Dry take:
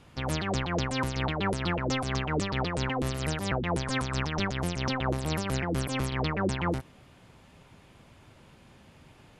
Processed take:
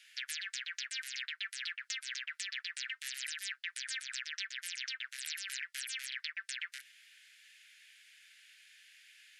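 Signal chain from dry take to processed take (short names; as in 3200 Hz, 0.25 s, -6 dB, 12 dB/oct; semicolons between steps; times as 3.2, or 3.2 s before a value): steep high-pass 1600 Hz 72 dB/oct; compressor, threshold -40 dBFS, peak gain reduction 10.5 dB; gain +3.5 dB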